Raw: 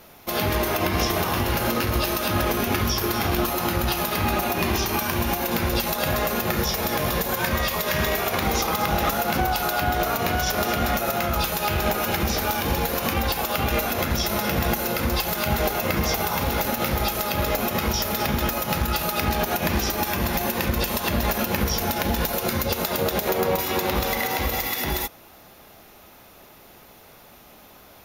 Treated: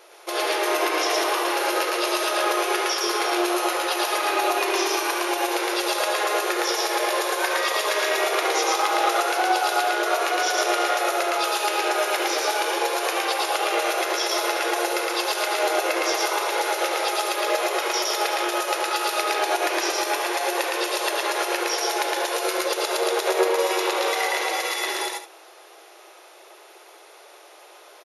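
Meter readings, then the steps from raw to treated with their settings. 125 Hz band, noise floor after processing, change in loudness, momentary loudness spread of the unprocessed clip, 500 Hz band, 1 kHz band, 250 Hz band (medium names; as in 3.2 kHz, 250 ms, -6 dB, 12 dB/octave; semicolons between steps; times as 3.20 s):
under -40 dB, -48 dBFS, +0.5 dB, 1 LU, +2.5 dB, +3.0 dB, -5.0 dB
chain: brick-wall FIR band-pass 320–12000 Hz; on a send: loudspeakers at several distances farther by 39 m -1 dB, 63 m -11 dB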